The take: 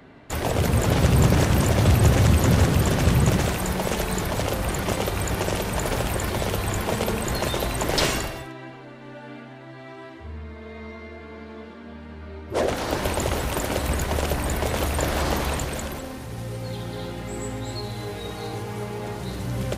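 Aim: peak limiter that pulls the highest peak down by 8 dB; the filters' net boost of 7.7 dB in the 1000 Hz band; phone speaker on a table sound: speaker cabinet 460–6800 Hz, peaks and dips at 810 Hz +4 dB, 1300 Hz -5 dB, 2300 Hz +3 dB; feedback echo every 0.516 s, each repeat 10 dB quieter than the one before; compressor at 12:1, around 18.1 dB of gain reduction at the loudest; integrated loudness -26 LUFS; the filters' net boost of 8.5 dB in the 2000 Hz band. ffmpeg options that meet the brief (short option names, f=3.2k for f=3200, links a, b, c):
-af "equalizer=f=1k:t=o:g=6.5,equalizer=f=2k:t=o:g=8,acompressor=threshold=-31dB:ratio=12,alimiter=level_in=1dB:limit=-24dB:level=0:latency=1,volume=-1dB,highpass=f=460:w=0.5412,highpass=f=460:w=1.3066,equalizer=f=810:t=q:w=4:g=4,equalizer=f=1.3k:t=q:w=4:g=-5,equalizer=f=2.3k:t=q:w=4:g=3,lowpass=f=6.8k:w=0.5412,lowpass=f=6.8k:w=1.3066,aecho=1:1:516|1032|1548|2064:0.316|0.101|0.0324|0.0104,volume=10.5dB"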